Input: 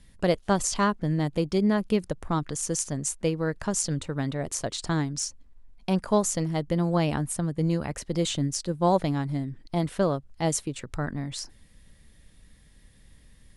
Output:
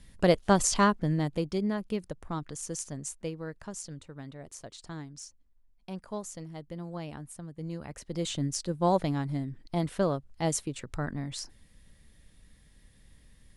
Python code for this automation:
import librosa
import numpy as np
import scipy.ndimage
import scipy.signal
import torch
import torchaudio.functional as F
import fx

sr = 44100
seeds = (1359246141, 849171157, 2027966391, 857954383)

y = fx.gain(x, sr, db=fx.line((0.81, 1.0), (1.79, -8.0), (2.99, -8.0), (3.98, -14.5), (7.49, -14.5), (8.5, -3.0)))